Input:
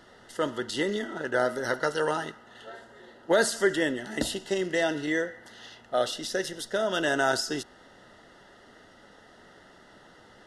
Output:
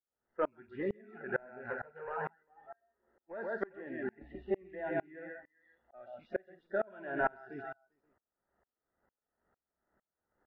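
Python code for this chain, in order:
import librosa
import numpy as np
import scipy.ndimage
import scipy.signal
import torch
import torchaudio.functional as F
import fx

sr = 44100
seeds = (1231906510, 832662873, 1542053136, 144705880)

p1 = fx.rattle_buzz(x, sr, strikes_db=-43.0, level_db=-29.0)
p2 = fx.peak_eq(p1, sr, hz=180.0, db=-3.0, octaves=2.8)
p3 = fx.quant_dither(p2, sr, seeds[0], bits=8, dither='none')
p4 = p2 + (p3 * 10.0 ** (-10.0 / 20.0))
p5 = fx.peak_eq(p4, sr, hz=64.0, db=10.5, octaves=0.36)
p6 = p5 + 10.0 ** (-5.5 / 20.0) * np.pad(p5, (int(132 * sr / 1000.0), 0))[:len(p5)]
p7 = 10.0 ** (-16.0 / 20.0) * np.tanh(p6 / 10.0 ** (-16.0 / 20.0))
p8 = scipy.signal.sosfilt(scipy.signal.butter(4, 1600.0, 'lowpass', fs=sr, output='sos'), p7)
p9 = p8 + 10.0 ** (-12.5 / 20.0) * np.pad(p8, (int(397 * sr / 1000.0), 0))[:len(p8)]
p10 = fx.noise_reduce_blind(p9, sr, reduce_db=19)
p11 = fx.tremolo_decay(p10, sr, direction='swelling', hz=2.2, depth_db=31)
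y = p11 * 10.0 ** (-1.5 / 20.0)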